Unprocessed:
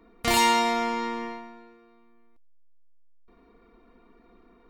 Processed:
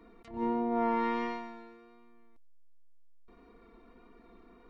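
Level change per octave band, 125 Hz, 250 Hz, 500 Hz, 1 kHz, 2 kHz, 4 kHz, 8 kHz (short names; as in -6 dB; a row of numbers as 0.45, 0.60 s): n/a, -1.5 dB, -4.0 dB, -8.5 dB, -14.0 dB, -24.5 dB, under -35 dB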